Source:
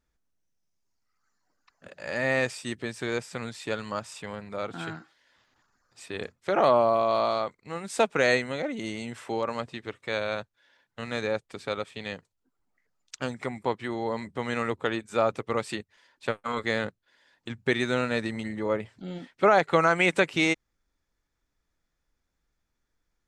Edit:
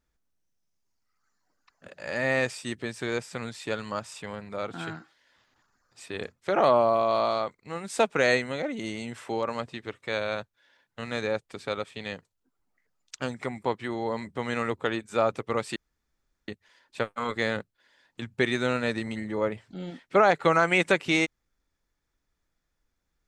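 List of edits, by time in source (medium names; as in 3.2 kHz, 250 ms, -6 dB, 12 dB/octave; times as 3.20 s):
15.76 s: insert room tone 0.72 s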